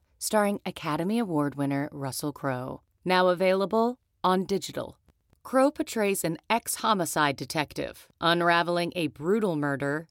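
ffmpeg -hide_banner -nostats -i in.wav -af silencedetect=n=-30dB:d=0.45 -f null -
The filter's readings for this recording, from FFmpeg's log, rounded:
silence_start: 4.85
silence_end: 5.46 | silence_duration: 0.61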